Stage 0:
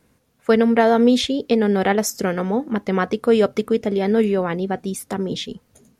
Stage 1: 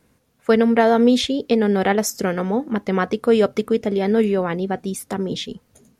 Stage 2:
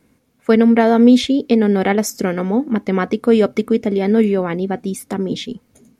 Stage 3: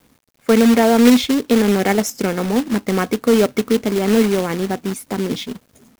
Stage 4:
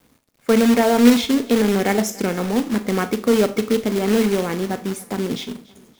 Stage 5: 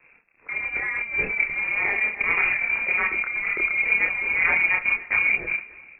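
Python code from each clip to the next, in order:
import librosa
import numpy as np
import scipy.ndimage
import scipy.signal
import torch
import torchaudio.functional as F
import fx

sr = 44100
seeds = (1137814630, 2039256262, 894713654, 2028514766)

y1 = x
y2 = fx.small_body(y1, sr, hz=(260.0, 2200.0), ring_ms=20, db=7)
y3 = fx.quant_companded(y2, sr, bits=4)
y3 = y3 * 10.0 ** (-1.0 / 20.0)
y4 = fx.echo_feedback(y3, sr, ms=287, feedback_pct=44, wet_db=-22)
y4 = fx.rev_schroeder(y4, sr, rt60_s=0.33, comb_ms=26, drr_db=10.5)
y4 = y4 * 10.0 ** (-2.5 / 20.0)
y5 = fx.freq_invert(y4, sr, carrier_hz=2600)
y5 = fx.over_compress(y5, sr, threshold_db=-23.0, ratio=-1.0)
y5 = fx.chorus_voices(y5, sr, voices=4, hz=0.66, base_ms=28, depth_ms=3.1, mix_pct=45)
y5 = y5 * 10.0 ** (2.0 / 20.0)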